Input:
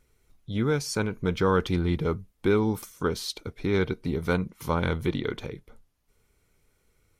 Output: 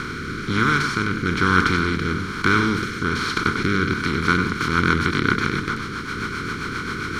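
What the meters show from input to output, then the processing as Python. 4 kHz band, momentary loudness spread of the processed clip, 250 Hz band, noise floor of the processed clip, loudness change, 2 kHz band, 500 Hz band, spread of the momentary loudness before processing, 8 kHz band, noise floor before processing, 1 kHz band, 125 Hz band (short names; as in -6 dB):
+10.0 dB, 9 LU, +6.0 dB, -30 dBFS, +6.5 dB, +16.0 dB, -0.5 dB, 9 LU, +4.5 dB, -70 dBFS, +12.0 dB, +5.0 dB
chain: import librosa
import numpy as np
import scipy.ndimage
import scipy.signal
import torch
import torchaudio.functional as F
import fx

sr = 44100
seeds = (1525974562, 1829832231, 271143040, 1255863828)

y = fx.bin_compress(x, sr, power=0.2)
y = fx.curve_eq(y, sr, hz=(320.0, 620.0, 1400.0, 12000.0), db=(0, -22, 10, -11))
y = fx.rotary_switch(y, sr, hz=1.1, then_hz=7.5, switch_at_s=3.73)
y = y + 10.0 ** (-9.0 / 20.0) * np.pad(y, (int(96 * sr / 1000.0), 0))[:len(y)]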